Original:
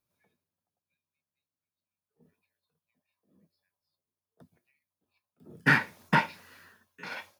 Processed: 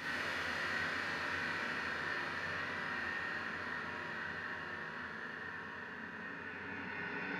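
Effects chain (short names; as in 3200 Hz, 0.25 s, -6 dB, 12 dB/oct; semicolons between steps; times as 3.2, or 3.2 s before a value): low-pass opened by the level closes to 2100 Hz, open at -26.5 dBFS; Paulstretch 24×, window 0.50 s, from 6.57; Schroeder reverb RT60 1.2 s, combs from 25 ms, DRR -6 dB; gain +11 dB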